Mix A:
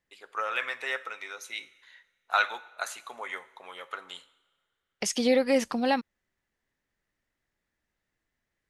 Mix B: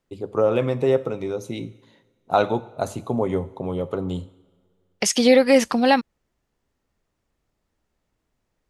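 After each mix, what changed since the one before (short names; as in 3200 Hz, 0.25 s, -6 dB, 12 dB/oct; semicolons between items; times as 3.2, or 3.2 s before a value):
first voice: remove resonant high-pass 1700 Hz, resonance Q 3.3; second voice +8.5 dB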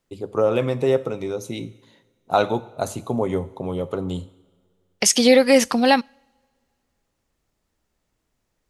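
second voice: send on; master: add high shelf 4100 Hz +6.5 dB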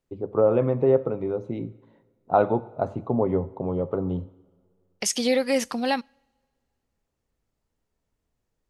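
first voice: add LPF 1100 Hz 12 dB/oct; second voice -8.5 dB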